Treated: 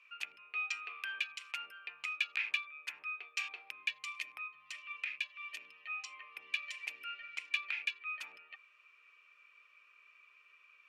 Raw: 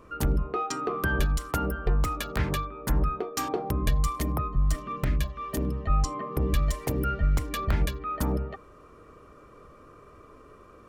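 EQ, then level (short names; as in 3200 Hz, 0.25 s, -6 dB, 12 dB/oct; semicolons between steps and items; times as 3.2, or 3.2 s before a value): ladder band-pass 2600 Hz, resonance 85%; +6.0 dB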